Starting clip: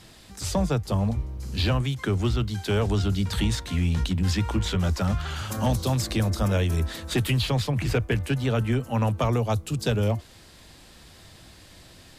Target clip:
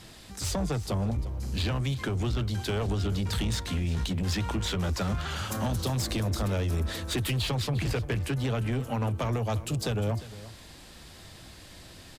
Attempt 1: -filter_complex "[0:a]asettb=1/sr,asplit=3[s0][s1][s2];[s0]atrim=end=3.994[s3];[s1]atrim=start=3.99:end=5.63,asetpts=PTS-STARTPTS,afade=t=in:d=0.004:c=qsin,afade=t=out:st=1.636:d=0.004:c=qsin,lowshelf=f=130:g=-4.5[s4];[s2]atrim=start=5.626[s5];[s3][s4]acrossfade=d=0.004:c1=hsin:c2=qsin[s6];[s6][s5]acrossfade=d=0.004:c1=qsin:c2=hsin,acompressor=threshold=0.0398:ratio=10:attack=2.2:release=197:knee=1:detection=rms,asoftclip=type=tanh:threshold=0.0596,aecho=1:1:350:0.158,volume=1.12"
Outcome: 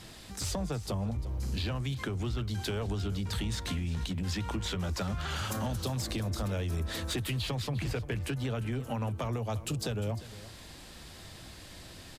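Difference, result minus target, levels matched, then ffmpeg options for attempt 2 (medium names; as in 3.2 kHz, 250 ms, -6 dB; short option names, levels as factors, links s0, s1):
compression: peak gain reduction +7 dB
-filter_complex "[0:a]asettb=1/sr,asplit=3[s0][s1][s2];[s0]atrim=end=3.994[s3];[s1]atrim=start=3.99:end=5.63,asetpts=PTS-STARTPTS,afade=t=in:d=0.004:c=qsin,afade=t=out:st=1.636:d=0.004:c=qsin,lowshelf=f=130:g=-4.5[s4];[s2]atrim=start=5.626[s5];[s3][s4]acrossfade=d=0.004:c1=hsin:c2=qsin[s6];[s6][s5]acrossfade=d=0.004:c1=qsin:c2=hsin,acompressor=threshold=0.0944:ratio=10:attack=2.2:release=197:knee=1:detection=rms,asoftclip=type=tanh:threshold=0.0596,aecho=1:1:350:0.158,volume=1.12"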